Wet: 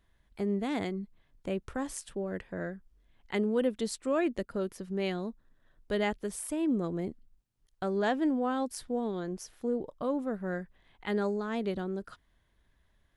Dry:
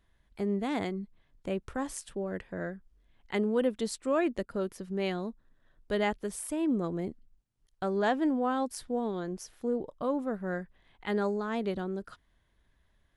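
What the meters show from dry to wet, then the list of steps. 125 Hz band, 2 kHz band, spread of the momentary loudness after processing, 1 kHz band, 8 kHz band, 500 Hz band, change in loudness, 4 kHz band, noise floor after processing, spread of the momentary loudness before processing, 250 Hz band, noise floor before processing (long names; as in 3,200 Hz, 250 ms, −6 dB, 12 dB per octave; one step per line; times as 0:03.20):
0.0 dB, −1.0 dB, 10 LU, −2.5 dB, 0.0 dB, −0.5 dB, −0.5 dB, 0.0 dB, −70 dBFS, 11 LU, 0.0 dB, −70 dBFS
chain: dynamic equaliser 980 Hz, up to −3 dB, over −39 dBFS, Q 1.1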